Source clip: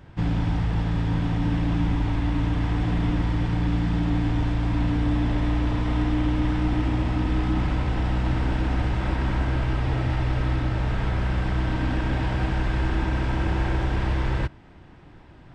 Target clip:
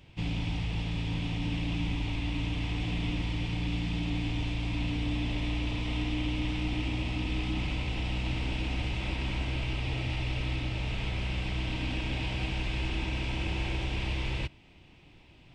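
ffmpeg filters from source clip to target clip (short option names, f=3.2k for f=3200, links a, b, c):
-af "highshelf=f=2k:t=q:w=3:g=7.5,volume=-8.5dB"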